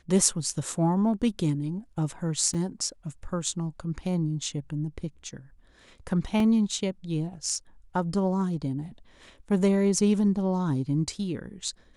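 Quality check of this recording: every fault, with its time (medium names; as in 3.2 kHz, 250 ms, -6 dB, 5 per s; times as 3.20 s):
2.54–2.55 s: dropout 5.2 ms
6.40 s: dropout 2.7 ms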